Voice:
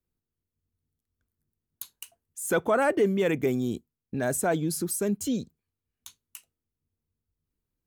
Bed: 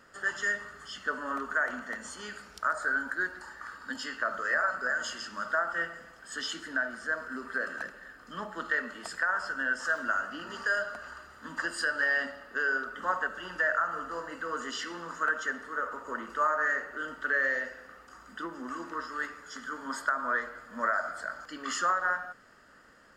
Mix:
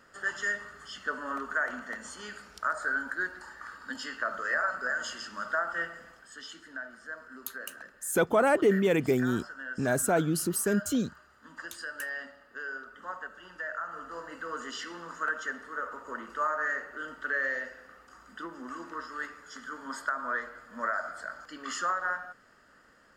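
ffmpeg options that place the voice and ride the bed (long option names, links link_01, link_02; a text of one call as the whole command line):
ffmpeg -i stem1.wav -i stem2.wav -filter_complex "[0:a]adelay=5650,volume=0dB[link_01];[1:a]volume=6dB,afade=type=out:start_time=6.13:duration=0.21:silence=0.375837,afade=type=in:start_time=13.68:duration=0.67:silence=0.446684[link_02];[link_01][link_02]amix=inputs=2:normalize=0" out.wav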